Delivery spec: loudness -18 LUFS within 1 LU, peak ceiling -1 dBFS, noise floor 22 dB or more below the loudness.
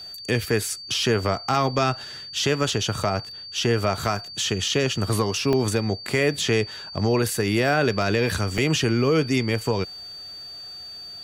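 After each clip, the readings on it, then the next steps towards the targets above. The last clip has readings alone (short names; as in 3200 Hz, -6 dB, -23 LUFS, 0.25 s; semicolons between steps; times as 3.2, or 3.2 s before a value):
dropouts 4; longest dropout 1.2 ms; steady tone 4600 Hz; tone level -36 dBFS; loudness -23.5 LUFS; peak -9.5 dBFS; loudness target -18.0 LUFS
-> interpolate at 4.68/5.53/8.02/8.58, 1.2 ms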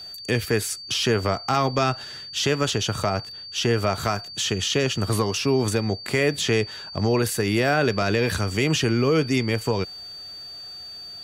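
dropouts 0; steady tone 4600 Hz; tone level -36 dBFS
-> notch 4600 Hz, Q 30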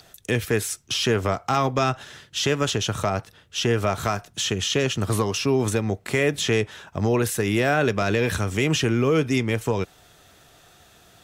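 steady tone none; loudness -23.5 LUFS; peak -9.5 dBFS; loudness target -18.0 LUFS
-> gain +5.5 dB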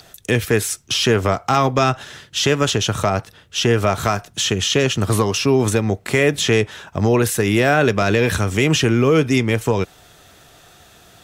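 loudness -18.0 LUFS; peak -4.0 dBFS; noise floor -49 dBFS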